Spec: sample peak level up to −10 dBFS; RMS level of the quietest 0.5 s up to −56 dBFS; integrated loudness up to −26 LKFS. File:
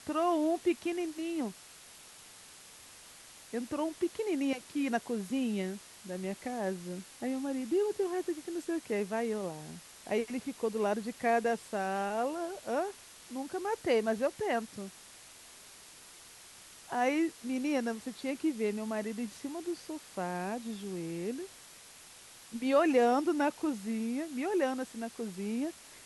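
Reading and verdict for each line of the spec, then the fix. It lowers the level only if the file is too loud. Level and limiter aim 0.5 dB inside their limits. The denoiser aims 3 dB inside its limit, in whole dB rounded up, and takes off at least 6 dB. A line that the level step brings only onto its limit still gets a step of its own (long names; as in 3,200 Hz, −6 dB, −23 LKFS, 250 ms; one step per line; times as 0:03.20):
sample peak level −15.0 dBFS: in spec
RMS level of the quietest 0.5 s −54 dBFS: out of spec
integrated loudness −34.0 LKFS: in spec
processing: broadband denoise 6 dB, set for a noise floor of −54 dBFS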